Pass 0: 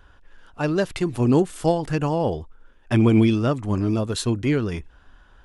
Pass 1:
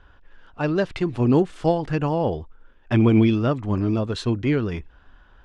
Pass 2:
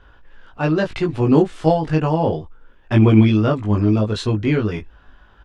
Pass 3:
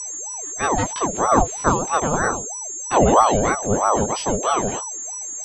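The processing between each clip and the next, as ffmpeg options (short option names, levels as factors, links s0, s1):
-af "lowpass=4100"
-filter_complex "[0:a]asplit=2[s0][s1];[s1]adelay=19,volume=0.794[s2];[s0][s2]amix=inputs=2:normalize=0,volume=1.26"
-af "aeval=exprs='val(0)+0.0562*sin(2*PI*6900*n/s)':c=same,aeval=exprs='val(0)*sin(2*PI*650*n/s+650*0.55/3.1*sin(2*PI*3.1*n/s))':c=same"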